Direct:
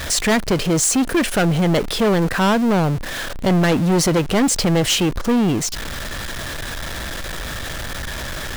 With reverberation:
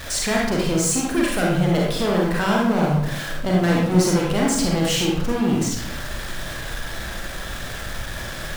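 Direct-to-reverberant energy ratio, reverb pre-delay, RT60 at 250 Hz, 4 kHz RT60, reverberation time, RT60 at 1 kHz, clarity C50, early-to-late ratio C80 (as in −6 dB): −3.0 dB, 35 ms, 1.0 s, 0.55 s, 0.80 s, 0.70 s, 0.0 dB, 4.0 dB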